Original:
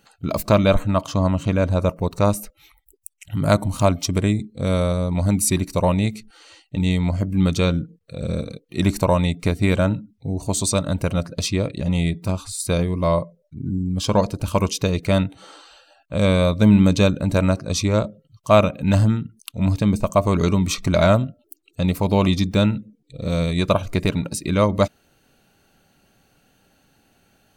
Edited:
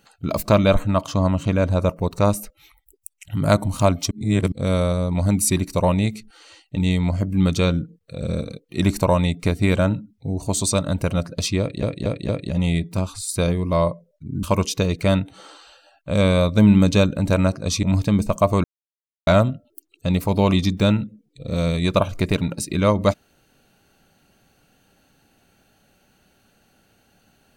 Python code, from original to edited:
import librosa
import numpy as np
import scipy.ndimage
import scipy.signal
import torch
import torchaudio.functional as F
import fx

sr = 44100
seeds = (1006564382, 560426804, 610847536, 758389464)

y = fx.edit(x, sr, fx.reverse_span(start_s=4.11, length_s=0.41),
    fx.stutter(start_s=11.6, slice_s=0.23, count=4),
    fx.cut(start_s=13.74, length_s=0.73),
    fx.cut(start_s=17.87, length_s=1.7),
    fx.silence(start_s=20.38, length_s=0.63), tone=tone)